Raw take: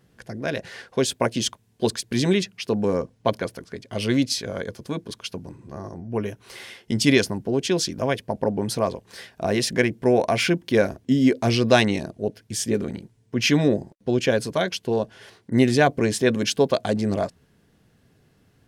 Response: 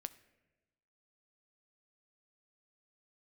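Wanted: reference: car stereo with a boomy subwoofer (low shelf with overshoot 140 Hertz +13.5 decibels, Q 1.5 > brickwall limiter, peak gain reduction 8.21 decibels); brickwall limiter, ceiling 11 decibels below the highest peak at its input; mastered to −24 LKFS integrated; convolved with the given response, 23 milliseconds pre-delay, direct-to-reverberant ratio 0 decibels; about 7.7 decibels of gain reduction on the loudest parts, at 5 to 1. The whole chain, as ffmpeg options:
-filter_complex "[0:a]acompressor=threshold=-20dB:ratio=5,alimiter=limit=-20.5dB:level=0:latency=1,asplit=2[link_01][link_02];[1:a]atrim=start_sample=2205,adelay=23[link_03];[link_02][link_03]afir=irnorm=-1:irlink=0,volume=3.5dB[link_04];[link_01][link_04]amix=inputs=2:normalize=0,lowshelf=frequency=140:width_type=q:width=1.5:gain=13.5,volume=5dB,alimiter=limit=-14dB:level=0:latency=1"

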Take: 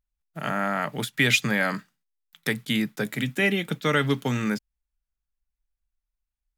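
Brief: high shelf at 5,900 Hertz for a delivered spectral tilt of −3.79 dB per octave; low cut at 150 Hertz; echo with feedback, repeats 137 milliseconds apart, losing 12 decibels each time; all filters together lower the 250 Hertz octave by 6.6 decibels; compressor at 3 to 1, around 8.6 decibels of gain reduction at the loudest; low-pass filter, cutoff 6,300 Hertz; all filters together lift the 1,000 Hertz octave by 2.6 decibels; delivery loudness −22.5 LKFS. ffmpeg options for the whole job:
ffmpeg -i in.wav -af "highpass=150,lowpass=6300,equalizer=frequency=250:width_type=o:gain=-7.5,equalizer=frequency=1000:width_type=o:gain=4,highshelf=frequency=5900:gain=4.5,acompressor=threshold=-26dB:ratio=3,aecho=1:1:137|274|411:0.251|0.0628|0.0157,volume=8dB" out.wav

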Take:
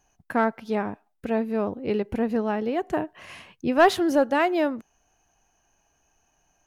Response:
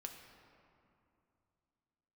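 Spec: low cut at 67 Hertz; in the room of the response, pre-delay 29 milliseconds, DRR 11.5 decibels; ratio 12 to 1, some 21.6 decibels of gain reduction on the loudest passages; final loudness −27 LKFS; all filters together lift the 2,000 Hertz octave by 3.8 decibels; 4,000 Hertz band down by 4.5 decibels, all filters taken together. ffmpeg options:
-filter_complex "[0:a]highpass=67,equalizer=frequency=2000:width_type=o:gain=6.5,equalizer=frequency=4000:width_type=o:gain=-9,acompressor=threshold=-33dB:ratio=12,asplit=2[link_01][link_02];[1:a]atrim=start_sample=2205,adelay=29[link_03];[link_02][link_03]afir=irnorm=-1:irlink=0,volume=-7.5dB[link_04];[link_01][link_04]amix=inputs=2:normalize=0,volume=11dB"

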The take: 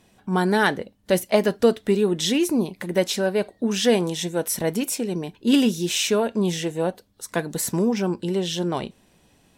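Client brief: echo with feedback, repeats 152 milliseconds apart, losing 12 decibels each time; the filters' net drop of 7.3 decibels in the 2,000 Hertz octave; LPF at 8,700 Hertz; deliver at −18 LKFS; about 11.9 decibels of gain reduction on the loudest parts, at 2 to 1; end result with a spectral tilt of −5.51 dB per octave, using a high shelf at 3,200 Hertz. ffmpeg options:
ffmpeg -i in.wav -af "lowpass=8700,equalizer=frequency=2000:width_type=o:gain=-7.5,highshelf=frequency=3200:gain=-8,acompressor=threshold=-36dB:ratio=2,aecho=1:1:152|304|456:0.251|0.0628|0.0157,volume=15.5dB" out.wav

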